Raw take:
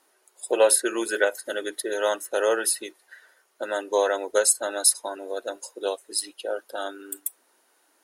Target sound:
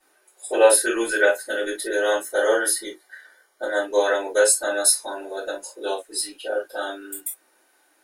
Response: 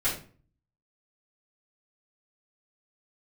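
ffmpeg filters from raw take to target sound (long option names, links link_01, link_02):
-filter_complex "[0:a]asettb=1/sr,asplit=3[link_01][link_02][link_03];[link_01]atrim=end=2.224[link_04];[link_02]atrim=start=2.22:end=3.84,asetpts=PTS-STARTPTS,afade=type=in:duration=0.004:curve=qsin,afade=type=out:start_time=1.616:duration=0.004:curve=qsin,asuperstop=centerf=2600:order=12:qfactor=5.6[link_05];[link_03]atrim=start=3.836[link_06];[link_04][link_05]acrossfade=duration=0.004:curve1=hsin:curve2=qsin[link_07];[link_07][link_06]acrossfade=duration=0.004:curve1=qsin:curve2=hsin[link_08];[1:a]atrim=start_sample=2205,atrim=end_sample=3528,asetrate=48510,aresample=44100[link_09];[link_08][link_09]afir=irnorm=-1:irlink=0,volume=-4.5dB"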